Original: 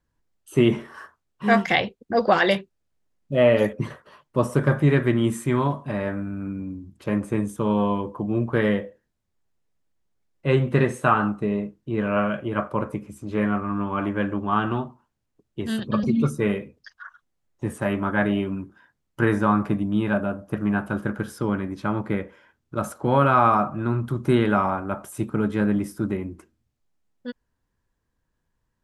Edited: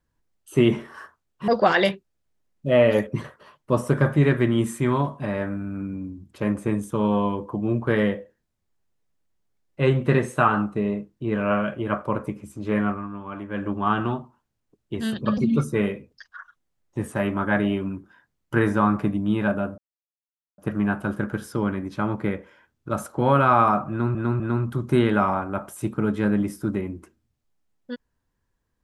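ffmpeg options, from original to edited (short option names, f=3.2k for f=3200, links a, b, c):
-filter_complex "[0:a]asplit=7[a][b][c][d][e][f][g];[a]atrim=end=1.482[h];[b]atrim=start=2.138:end=13.75,asetpts=PTS-STARTPTS,afade=t=out:st=11.412:d=0.2:silence=0.354813[i];[c]atrim=start=13.75:end=14.15,asetpts=PTS-STARTPTS,volume=-9dB[j];[d]atrim=start=14.15:end=20.44,asetpts=PTS-STARTPTS,afade=t=in:d=0.2:silence=0.354813,afade=t=out:st=6.286:d=0.004:c=hsin,apad=pad_dur=0.8[k];[e]atrim=start=20.44:end=24.012,asetpts=PTS-STARTPTS,afade=t=in:d=0.004:c=hsin[l];[f]atrim=start=23.758:end=24.012[m];[g]atrim=start=23.758[n];[i][j][k][l]concat=n=4:v=0:a=1[o];[h][o]acrossfade=d=0.004:c1=hsin:c2=hsin[p];[p][m]acrossfade=d=0.004:c1=hsin:c2=hsin[q];[q][n]acrossfade=d=0.004:c1=hsin:c2=hsin"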